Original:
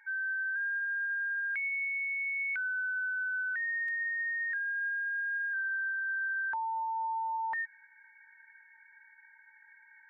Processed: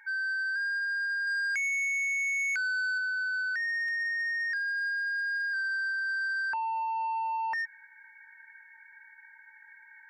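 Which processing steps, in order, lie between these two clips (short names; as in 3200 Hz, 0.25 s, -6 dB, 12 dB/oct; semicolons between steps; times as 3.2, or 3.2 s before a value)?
1.27–2.98 tilt shelf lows -5 dB, about 850 Hz; soft clip -32.5 dBFS, distortion -16 dB; gain +5 dB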